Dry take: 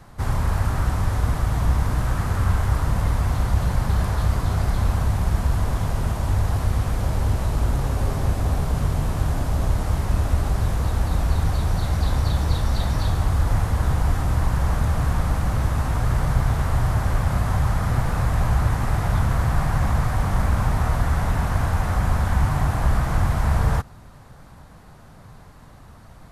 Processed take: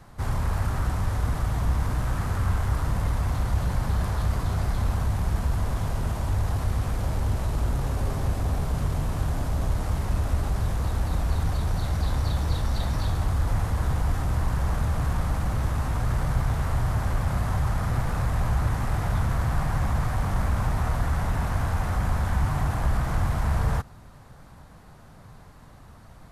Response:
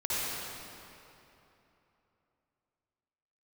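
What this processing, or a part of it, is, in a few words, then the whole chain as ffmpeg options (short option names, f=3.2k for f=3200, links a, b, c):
parallel distortion: -filter_complex "[0:a]asplit=2[a][b];[b]asoftclip=type=hard:threshold=-24dB,volume=-9dB[c];[a][c]amix=inputs=2:normalize=0,volume=-5.5dB"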